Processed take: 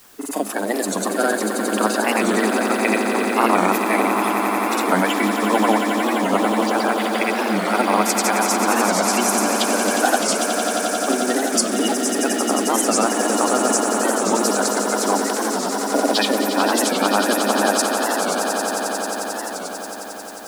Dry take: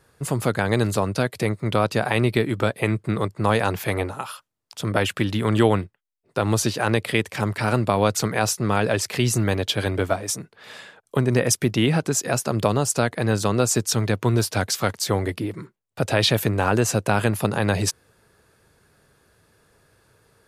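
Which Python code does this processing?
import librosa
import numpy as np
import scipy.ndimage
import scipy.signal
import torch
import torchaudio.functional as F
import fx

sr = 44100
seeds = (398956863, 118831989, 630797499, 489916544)

p1 = fx.spec_quant(x, sr, step_db=30)
p2 = fx.high_shelf(p1, sr, hz=5600.0, db=10.0)
p3 = fx.rider(p2, sr, range_db=10, speed_s=0.5)
p4 = p2 + (p3 * 10.0 ** (0.0 / 20.0))
p5 = fx.granulator(p4, sr, seeds[0], grain_ms=100.0, per_s=20.0, spray_ms=100.0, spread_st=0)
p6 = scipy.signal.sosfilt(scipy.signal.cheby1(6, 6, 200.0, 'highpass', fs=sr, output='sos'), p5)
p7 = fx.quant_dither(p6, sr, seeds[1], bits=8, dither='triangular')
p8 = p7 + fx.echo_swell(p7, sr, ms=89, loudest=8, wet_db=-9.5, dry=0)
p9 = fx.record_warp(p8, sr, rpm=45.0, depth_cents=160.0)
y = p9 * 10.0 ** (-1.0 / 20.0)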